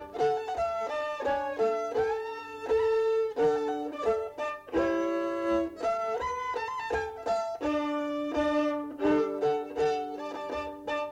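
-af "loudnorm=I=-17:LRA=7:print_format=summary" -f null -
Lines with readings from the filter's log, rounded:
Input Integrated:    -30.2 LUFS
Input True Peak:     -16.5 dBTP
Input LRA:             1.6 LU
Input Threshold:     -40.2 LUFS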